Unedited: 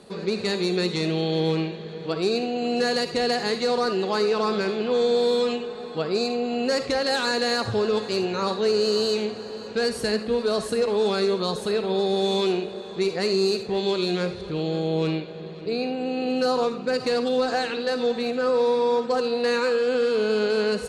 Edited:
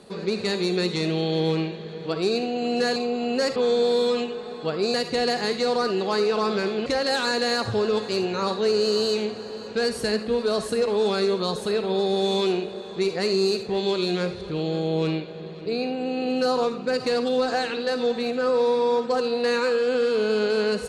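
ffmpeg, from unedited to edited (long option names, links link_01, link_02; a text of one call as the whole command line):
ffmpeg -i in.wav -filter_complex "[0:a]asplit=5[link_01][link_02][link_03][link_04][link_05];[link_01]atrim=end=2.962[link_06];[link_02]atrim=start=6.258:end=6.862[link_07];[link_03]atrim=start=4.878:end=6.262[link_08];[link_04]atrim=start=2.958:end=4.882[link_09];[link_05]atrim=start=6.858[link_10];[link_06][link_07]acrossfade=duration=0.004:curve1=hsin:curve2=hsin[link_11];[link_11][link_08]acrossfade=duration=0.004:curve1=hsin:curve2=hsin[link_12];[link_12][link_09]acrossfade=duration=0.004:curve1=hsin:curve2=hsin[link_13];[link_13][link_10]acrossfade=duration=0.004:curve1=hsin:curve2=hsin" out.wav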